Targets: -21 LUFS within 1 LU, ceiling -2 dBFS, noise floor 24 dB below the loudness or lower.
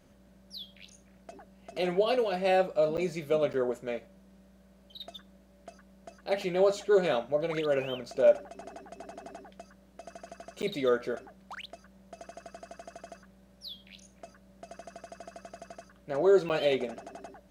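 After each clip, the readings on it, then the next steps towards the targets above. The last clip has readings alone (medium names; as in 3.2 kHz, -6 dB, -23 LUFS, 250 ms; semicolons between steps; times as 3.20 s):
dropouts 4; longest dropout 8.8 ms; loudness -28.5 LUFS; peak level -11.5 dBFS; loudness target -21.0 LUFS
-> interpolate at 2.97/3.53/10.62/16.49 s, 8.8 ms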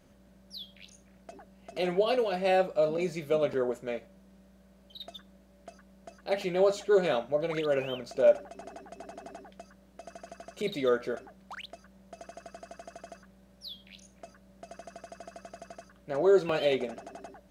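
dropouts 0; loudness -28.5 LUFS; peak level -11.5 dBFS; loudness target -21.0 LUFS
-> trim +7.5 dB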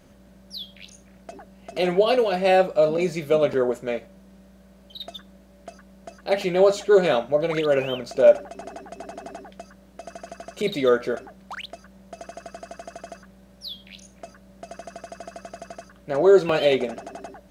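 loudness -21.0 LUFS; peak level -4.0 dBFS; noise floor -52 dBFS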